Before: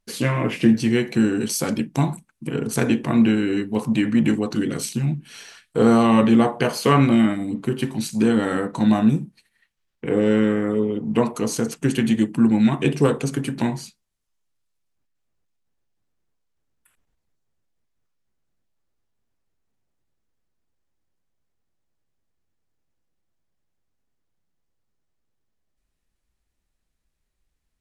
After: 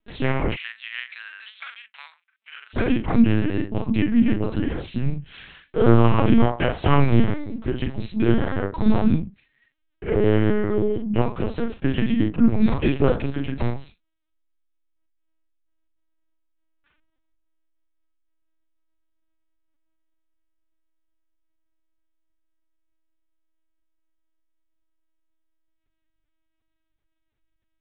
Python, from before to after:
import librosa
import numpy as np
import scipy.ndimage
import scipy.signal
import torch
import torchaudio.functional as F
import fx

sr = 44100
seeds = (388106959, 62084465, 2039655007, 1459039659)

y = fx.doubler(x, sr, ms=43.0, db=-4.5)
y = fx.lpc_vocoder(y, sr, seeds[0], excitation='pitch_kept', order=8)
y = fx.highpass(y, sr, hz=1500.0, slope=24, at=(0.55, 2.73), fade=0.02)
y = F.gain(torch.from_numpy(y), -1.0).numpy()